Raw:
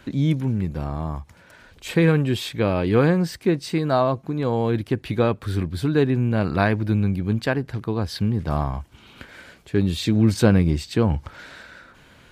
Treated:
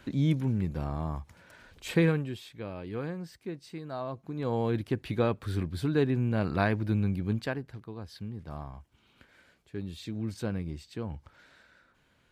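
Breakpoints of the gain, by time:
2 s -5.5 dB
2.42 s -18 dB
3.94 s -18 dB
4.54 s -7 dB
7.31 s -7 dB
7.88 s -17 dB

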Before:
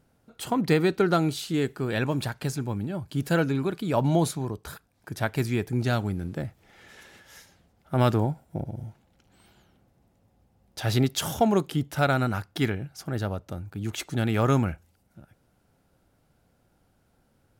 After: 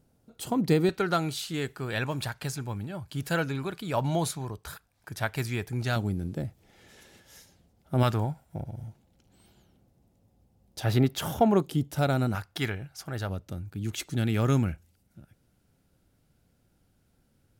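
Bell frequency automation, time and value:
bell -8 dB 2.1 oct
1600 Hz
from 0.89 s 280 Hz
from 5.96 s 1500 Hz
from 8.03 s 320 Hz
from 8.88 s 1500 Hz
from 10.84 s 6600 Hz
from 11.62 s 1600 Hz
from 12.35 s 250 Hz
from 13.29 s 870 Hz

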